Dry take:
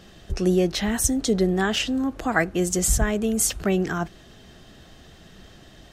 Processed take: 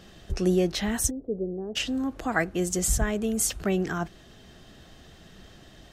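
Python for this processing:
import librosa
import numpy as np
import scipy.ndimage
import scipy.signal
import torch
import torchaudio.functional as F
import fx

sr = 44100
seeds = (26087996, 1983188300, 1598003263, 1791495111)

y = fx.rider(x, sr, range_db=4, speed_s=2.0)
y = fx.ladder_lowpass(y, sr, hz=580.0, resonance_pct=50, at=(1.09, 1.75), fade=0.02)
y = y * 10.0 ** (-4.0 / 20.0)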